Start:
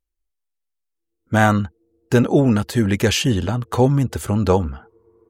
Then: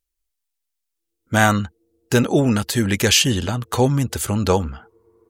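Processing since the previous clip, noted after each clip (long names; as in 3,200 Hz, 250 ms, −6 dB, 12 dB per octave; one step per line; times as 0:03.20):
high-shelf EQ 2,100 Hz +10.5 dB
level −2 dB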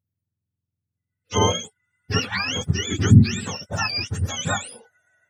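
frequency axis turned over on the octave scale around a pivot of 820 Hz
level −3.5 dB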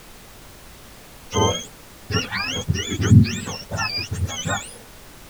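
background noise pink −43 dBFS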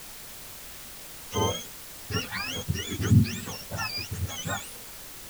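bit-depth reduction 6 bits, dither triangular
level −7.5 dB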